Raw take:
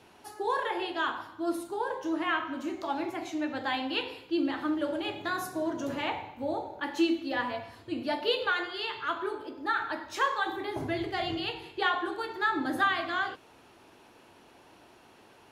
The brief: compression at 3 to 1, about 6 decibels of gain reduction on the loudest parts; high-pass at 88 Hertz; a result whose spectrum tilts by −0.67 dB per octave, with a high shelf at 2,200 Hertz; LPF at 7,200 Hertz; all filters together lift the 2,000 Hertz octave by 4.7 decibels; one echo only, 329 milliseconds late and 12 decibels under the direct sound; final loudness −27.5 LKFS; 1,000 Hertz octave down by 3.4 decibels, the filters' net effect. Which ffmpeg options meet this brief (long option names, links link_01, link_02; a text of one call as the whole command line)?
ffmpeg -i in.wav -af "highpass=88,lowpass=7200,equalizer=frequency=1000:width_type=o:gain=-8,equalizer=frequency=2000:width_type=o:gain=7.5,highshelf=frequency=2200:gain=4,acompressor=threshold=-28dB:ratio=3,aecho=1:1:329:0.251,volume=5dB" out.wav